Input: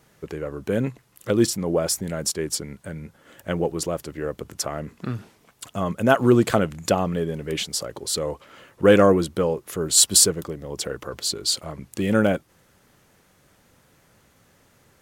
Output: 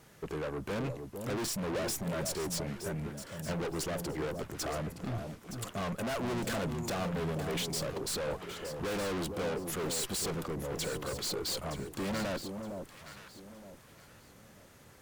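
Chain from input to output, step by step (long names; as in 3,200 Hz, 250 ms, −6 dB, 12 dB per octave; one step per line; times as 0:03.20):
tube saturation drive 31 dB, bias 0.4
gain into a clipping stage and back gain 35 dB
delay that swaps between a low-pass and a high-pass 459 ms, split 970 Hz, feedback 53%, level −5.5 dB
level +1.5 dB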